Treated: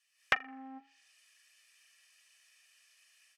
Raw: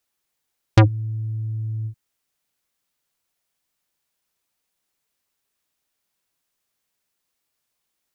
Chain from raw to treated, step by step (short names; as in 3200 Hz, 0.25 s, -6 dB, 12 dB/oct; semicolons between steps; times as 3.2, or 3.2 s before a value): speaker cabinet 440–3600 Hz, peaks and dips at 500 Hz -4 dB, 730 Hz +8 dB, 1100 Hz +10 dB, 1600 Hz -7 dB, 3000 Hz -6 dB; compressor 8:1, threshold -34 dBFS, peak gain reduction 21 dB; comb 4 ms, depth 78%; tape echo 0.1 s, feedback 64%, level -16 dB, low-pass 1500 Hz; AGC gain up to 12 dB; wide varispeed 2.41×; high shelf 2400 Hz +11.5 dB; treble ducked by the level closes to 1700 Hz, closed at -40.5 dBFS; Doppler distortion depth 0.49 ms; gain -3 dB